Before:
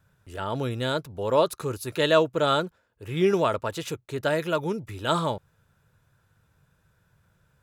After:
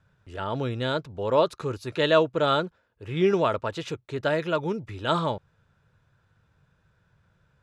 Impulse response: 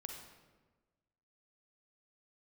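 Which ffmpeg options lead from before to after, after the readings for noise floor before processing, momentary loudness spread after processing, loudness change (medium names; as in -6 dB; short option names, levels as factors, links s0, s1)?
-68 dBFS, 13 LU, 0.0 dB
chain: -af "lowpass=5000"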